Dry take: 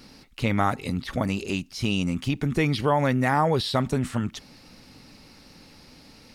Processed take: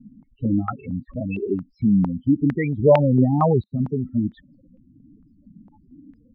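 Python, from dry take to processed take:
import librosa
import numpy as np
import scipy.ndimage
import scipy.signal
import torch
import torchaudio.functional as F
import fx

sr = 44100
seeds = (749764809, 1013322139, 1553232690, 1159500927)

y = fx.low_shelf(x, sr, hz=440.0, db=7.5, at=(2.77, 3.68))
y = fx.spec_topn(y, sr, count=8)
y = fx.filter_held_lowpass(y, sr, hz=4.4, low_hz=210.0, high_hz=2600.0)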